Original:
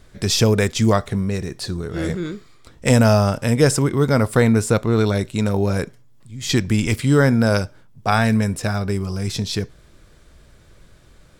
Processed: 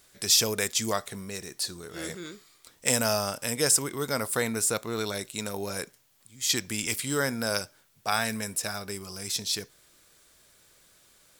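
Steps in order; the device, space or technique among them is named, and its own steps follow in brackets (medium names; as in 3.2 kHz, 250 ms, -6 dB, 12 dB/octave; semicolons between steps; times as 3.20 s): turntable without a phono preamp (RIAA curve recording; white noise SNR 37 dB); trim -9 dB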